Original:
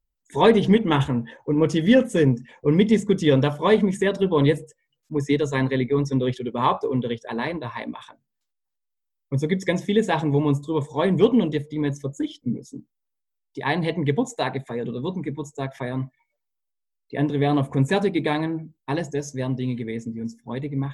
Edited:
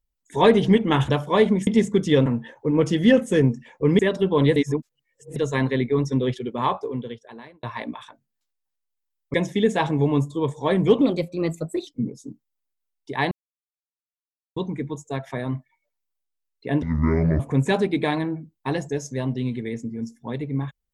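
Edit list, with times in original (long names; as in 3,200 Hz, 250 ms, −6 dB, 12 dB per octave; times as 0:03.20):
0:01.09–0:02.82: swap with 0:03.41–0:03.99
0:04.56–0:05.36: reverse
0:06.36–0:07.63: fade out
0:09.34–0:09.67: remove
0:11.34–0:12.35: play speed 117%
0:13.79–0:15.04: silence
0:17.30–0:17.62: play speed 56%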